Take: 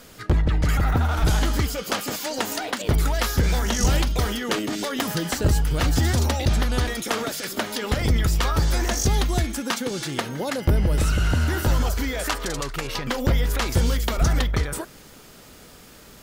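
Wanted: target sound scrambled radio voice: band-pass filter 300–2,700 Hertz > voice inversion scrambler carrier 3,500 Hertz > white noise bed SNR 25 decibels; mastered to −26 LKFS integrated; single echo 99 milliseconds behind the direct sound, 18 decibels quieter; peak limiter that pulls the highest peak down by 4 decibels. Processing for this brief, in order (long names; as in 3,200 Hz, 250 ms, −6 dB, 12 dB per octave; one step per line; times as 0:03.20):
brickwall limiter −15.5 dBFS
band-pass filter 300–2,700 Hz
single-tap delay 99 ms −18 dB
voice inversion scrambler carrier 3,500 Hz
white noise bed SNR 25 dB
level +3 dB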